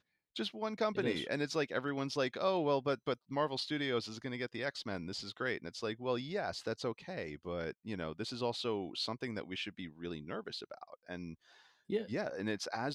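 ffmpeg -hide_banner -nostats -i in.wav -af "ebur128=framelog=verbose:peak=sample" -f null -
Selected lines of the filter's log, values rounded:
Integrated loudness:
  I:         -38.0 LUFS
  Threshold: -48.2 LUFS
Loudness range:
  LRA:         6.7 LU
  Threshold: -58.3 LUFS
  LRA low:   -41.9 LUFS
  LRA high:  -35.2 LUFS
Sample peak:
  Peak:      -20.5 dBFS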